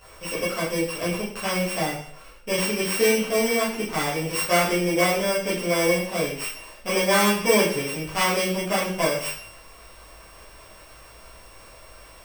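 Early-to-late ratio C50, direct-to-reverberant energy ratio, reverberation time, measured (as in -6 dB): 5.0 dB, -10.5 dB, 0.55 s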